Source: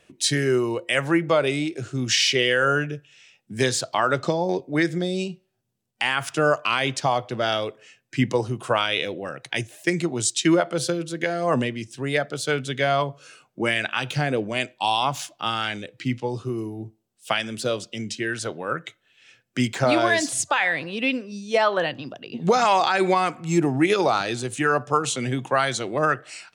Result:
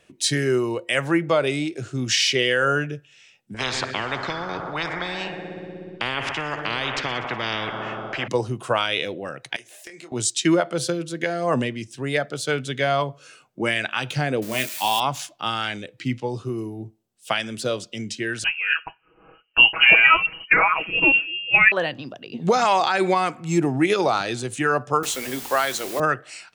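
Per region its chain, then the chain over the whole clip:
3.54–8.28 LPF 1100 Hz + multi-head echo 61 ms, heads first and second, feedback 70%, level -22.5 dB + spectral compressor 10:1
9.56–10.12 HPF 460 Hz + compressor 8:1, threshold -38 dBFS + doubler 25 ms -6.5 dB
14.42–15 switching spikes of -21.5 dBFS + doubler 23 ms -8.5 dB
18.44–21.72 inverted band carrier 3000 Hz + high shelf 2300 Hz +7.5 dB + comb 6.2 ms, depth 82%
25.03–26 HPF 280 Hz + notches 60/120/180/240/300/360/420 Hz + requantised 6-bit, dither triangular
whole clip: dry

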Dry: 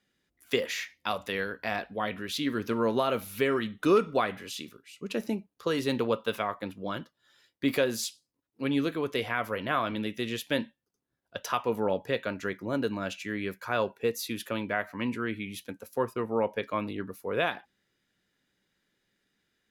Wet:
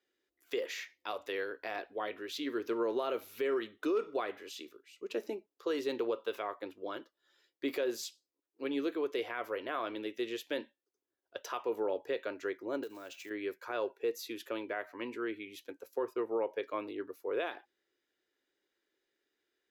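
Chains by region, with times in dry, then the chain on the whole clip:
12.83–13.31 block floating point 5-bit + high shelf 6900 Hz +7.5 dB + compressor 4:1, threshold -36 dBFS
whole clip: resonant low shelf 250 Hz -12 dB, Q 3; limiter -17 dBFS; bell 9800 Hz -12 dB 0.26 oct; gain -7.5 dB

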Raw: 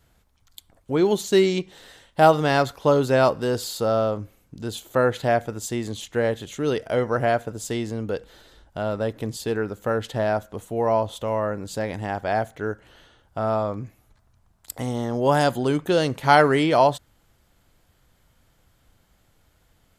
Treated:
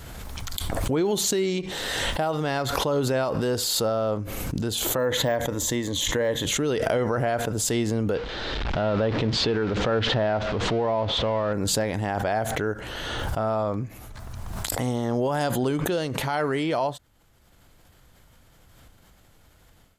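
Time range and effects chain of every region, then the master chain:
4.98–6.47 de-esser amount 85% + ripple EQ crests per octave 1.1, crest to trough 8 dB
8.15–11.53 zero-crossing step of -32.5 dBFS + LPF 4400 Hz 24 dB/oct
whole clip: AGC gain up to 11.5 dB; limiter -9.5 dBFS; backwards sustainer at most 20 dB/s; gain -7 dB

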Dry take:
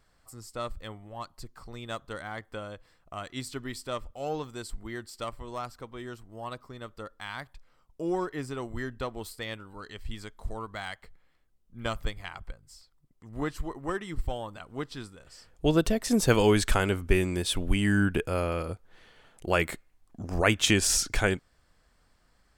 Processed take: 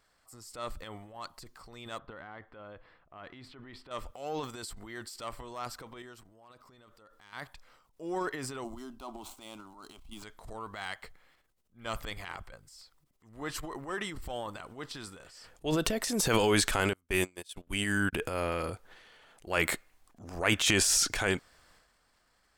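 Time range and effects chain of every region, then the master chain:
1.98–3.91 compressor 4:1, threshold -38 dBFS + air absorption 410 m
6.02–7.33 hard clip -29.5 dBFS + compressor 16:1, threshold -49 dBFS
8.64–10.23 median filter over 9 samples + fixed phaser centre 480 Hz, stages 6
16.93–18.13 gate -26 dBFS, range -39 dB + high shelf 3600 Hz +6.5 dB
whole clip: low shelf 300 Hz -11 dB; transient shaper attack -7 dB, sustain +9 dB

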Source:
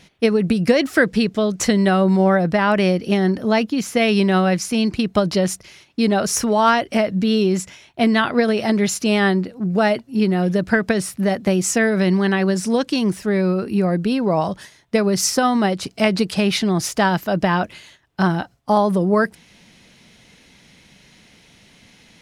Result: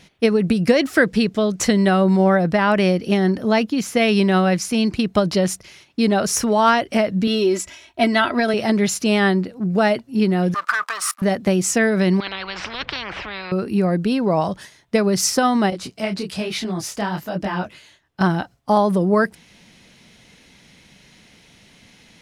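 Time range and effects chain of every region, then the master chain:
7.27–8.54 bell 160 Hz -5.5 dB 1.1 oct + comb 3.1 ms, depth 67%
10.54–11.22 sample leveller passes 3 + level quantiser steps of 23 dB + resonant high-pass 1200 Hz, resonance Q 9.5
12.2–13.52 LPF 2800 Hz 24 dB/oct + spectral compressor 10:1
15.7–18.21 compressor 1.5:1, threshold -21 dBFS + detuned doubles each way 39 cents
whole clip: dry

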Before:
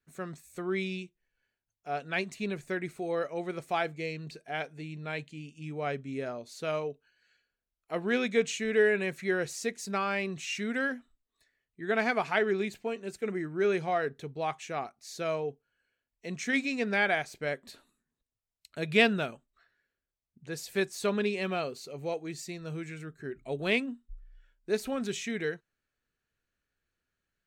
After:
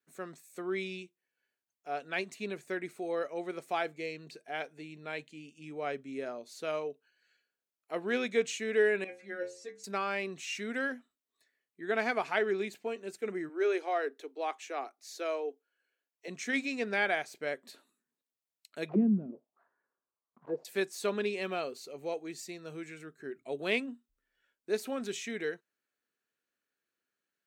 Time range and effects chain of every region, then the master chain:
9.04–9.84 LPF 7100 Hz + bell 560 Hz +8 dB 0.46 oct + metallic resonator 65 Hz, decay 0.54 s, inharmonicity 0.008
13.49–16.28 steep high-pass 260 Hz 72 dB/oct + bell 8700 Hz -2.5 dB 0.27 oct
18.89–20.65 block floating point 3-bit + envelope low-pass 210–1100 Hz down, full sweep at -25.5 dBFS
whole clip: Chebyshev high-pass 290 Hz, order 2; high shelf 11000 Hz +3.5 dB; gain -2 dB

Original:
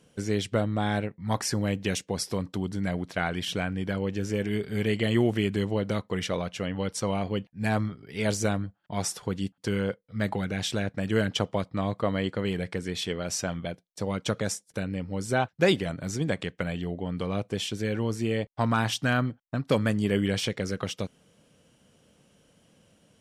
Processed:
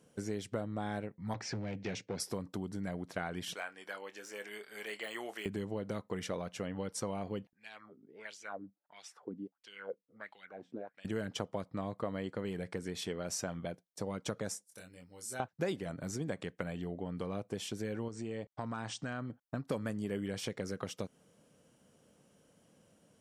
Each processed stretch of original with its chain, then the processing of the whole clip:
1.34–2.2 hard clip -25.5 dBFS + speaker cabinet 110–5600 Hz, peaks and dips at 110 Hz +9 dB, 1100 Hz -7 dB, 2300 Hz +7 dB
3.54–5.46 HPF 920 Hz + de-esser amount 100% + doubler 24 ms -13 dB
7.53–11.05 HPF 140 Hz 6 dB/oct + wah 1.5 Hz 230–3300 Hz, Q 3.7
14.67–15.4 pre-emphasis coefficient 0.9 + doubler 23 ms -3.5 dB
18.08–19.3 compressor 2.5:1, threshold -32 dBFS + brick-wall FIR low-pass 9000 Hz
whole clip: bell 3100 Hz -7 dB 1.6 oct; compressor 3:1, threshold -31 dBFS; low shelf 100 Hz -10 dB; gain -2.5 dB

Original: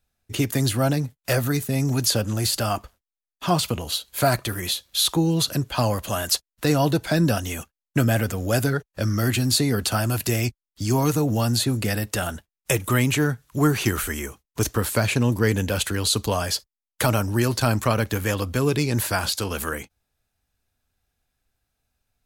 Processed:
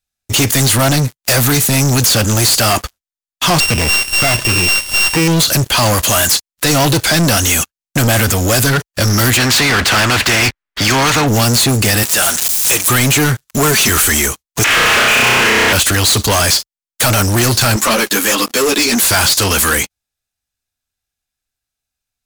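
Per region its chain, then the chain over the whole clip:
3.6–5.28 sample sorter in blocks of 16 samples + upward compressor, threshold -22 dBFS
9.37–11.27 synth low-pass 1800 Hz, resonance Q 1.8 + spectral compressor 2:1
12.03–12.9 switching spikes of -22 dBFS + HPF 480 Hz 6 dB/oct
13.44–13.89 G.711 law mismatch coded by A + comb 4.6 ms, depth 67%
14.64–15.73 delta modulation 16 kbps, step -17.5 dBFS + HPF 720 Hz 6 dB/oct + flutter echo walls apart 5.5 m, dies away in 1.4 s
17.76–19.11 brick-wall FIR high-pass 200 Hz + ensemble effect
whole clip: EQ curve 490 Hz 0 dB, 7100 Hz +13 dB, 12000 Hz +9 dB; limiter -7 dBFS; sample leveller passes 5; gain -1.5 dB

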